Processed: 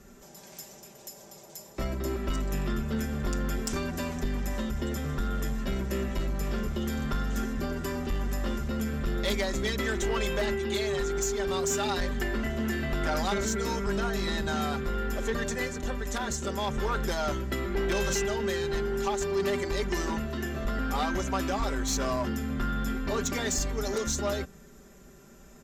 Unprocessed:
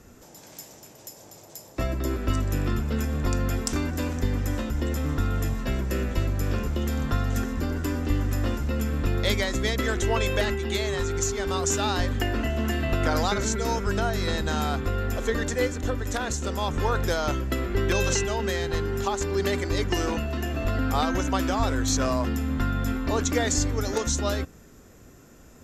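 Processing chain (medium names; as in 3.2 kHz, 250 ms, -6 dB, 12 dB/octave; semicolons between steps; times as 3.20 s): comb 5.1 ms, depth 79%; saturation -18.5 dBFS, distortion -16 dB; trim -3.5 dB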